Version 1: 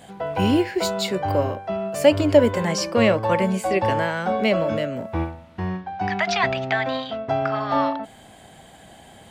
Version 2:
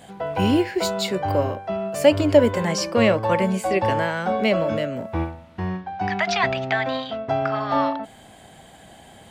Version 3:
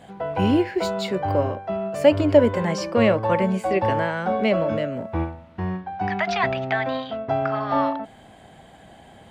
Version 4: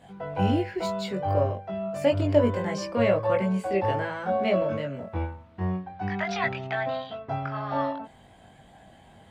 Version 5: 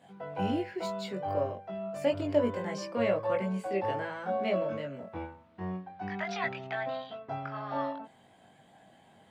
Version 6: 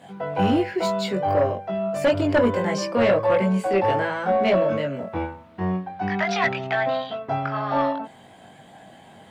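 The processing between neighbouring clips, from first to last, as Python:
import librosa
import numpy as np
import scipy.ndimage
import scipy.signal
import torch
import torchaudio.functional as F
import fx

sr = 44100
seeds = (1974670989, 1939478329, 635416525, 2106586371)

y1 = x
y2 = fx.high_shelf(y1, sr, hz=4200.0, db=-11.5)
y3 = fx.chorus_voices(y2, sr, voices=4, hz=0.27, base_ms=21, depth_ms=1.1, mix_pct=45)
y3 = y3 * 10.0 ** (-2.5 / 20.0)
y4 = scipy.signal.sosfilt(scipy.signal.butter(2, 150.0, 'highpass', fs=sr, output='sos'), y3)
y4 = y4 * 10.0 ** (-5.5 / 20.0)
y5 = fx.fold_sine(y4, sr, drive_db=8, ceiling_db=-13.0)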